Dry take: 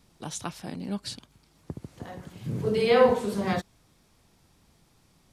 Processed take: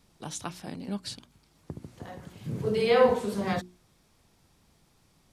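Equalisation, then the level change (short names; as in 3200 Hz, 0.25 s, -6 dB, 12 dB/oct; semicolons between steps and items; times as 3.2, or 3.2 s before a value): notches 60/120/180/240/300/360 Hz; -1.5 dB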